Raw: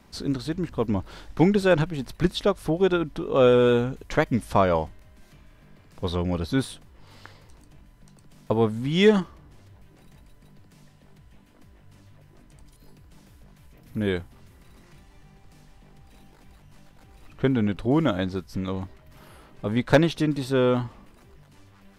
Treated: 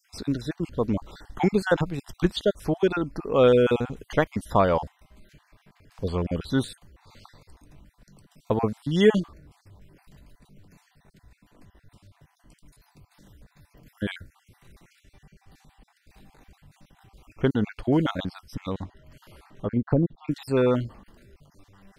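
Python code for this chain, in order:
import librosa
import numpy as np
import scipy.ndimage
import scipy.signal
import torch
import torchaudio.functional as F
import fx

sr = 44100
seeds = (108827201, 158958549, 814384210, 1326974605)

y = fx.spec_dropout(x, sr, seeds[0], share_pct=40)
y = fx.env_lowpass_down(y, sr, base_hz=330.0, full_db=-19.0, at=(18.79, 20.28))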